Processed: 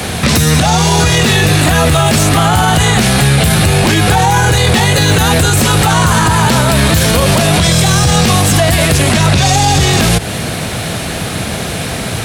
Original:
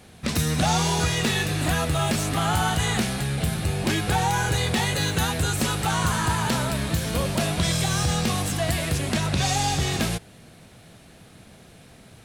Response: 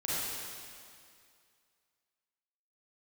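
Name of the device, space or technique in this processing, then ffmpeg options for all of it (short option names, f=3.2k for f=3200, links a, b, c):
mastering chain: -filter_complex "[0:a]highpass=54,equalizer=f=230:t=o:w=2:g=-3.5,acrossover=split=110|720[a][b][c];[a]acompressor=threshold=-32dB:ratio=4[d];[b]acompressor=threshold=-29dB:ratio=4[e];[c]acompressor=threshold=-31dB:ratio=4[f];[d][e][f]amix=inputs=3:normalize=0,acompressor=threshold=-34dB:ratio=2,asoftclip=type=tanh:threshold=-21dB,alimiter=level_in=33dB:limit=-1dB:release=50:level=0:latency=1,volume=-1dB"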